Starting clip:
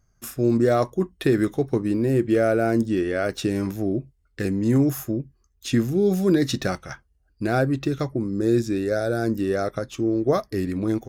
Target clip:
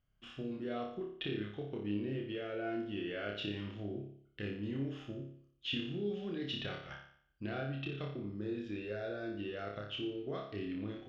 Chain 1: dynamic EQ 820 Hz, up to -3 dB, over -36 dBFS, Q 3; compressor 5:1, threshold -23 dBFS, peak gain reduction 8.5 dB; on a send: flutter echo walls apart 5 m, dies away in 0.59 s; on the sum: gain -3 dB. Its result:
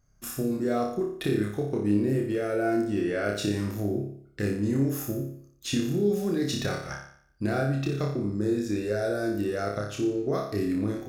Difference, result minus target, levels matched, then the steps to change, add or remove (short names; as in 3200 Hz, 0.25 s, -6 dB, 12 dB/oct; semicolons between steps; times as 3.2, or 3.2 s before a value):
4000 Hz band -8.5 dB
add after compressor: ladder low-pass 3200 Hz, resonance 85%